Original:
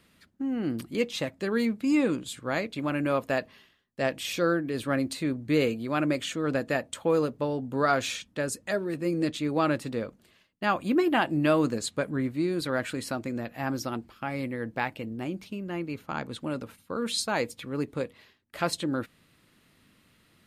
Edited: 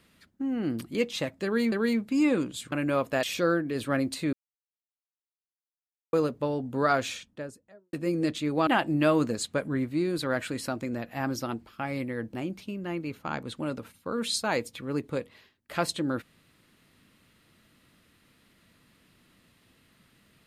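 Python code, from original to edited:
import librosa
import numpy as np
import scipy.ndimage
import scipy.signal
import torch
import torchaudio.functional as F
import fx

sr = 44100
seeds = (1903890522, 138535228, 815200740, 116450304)

y = fx.studio_fade_out(x, sr, start_s=7.84, length_s=1.08)
y = fx.edit(y, sr, fx.repeat(start_s=1.44, length_s=0.28, count=2),
    fx.cut(start_s=2.44, length_s=0.45),
    fx.cut(start_s=3.4, length_s=0.82),
    fx.silence(start_s=5.32, length_s=1.8),
    fx.cut(start_s=9.66, length_s=1.44),
    fx.cut(start_s=14.77, length_s=0.41), tone=tone)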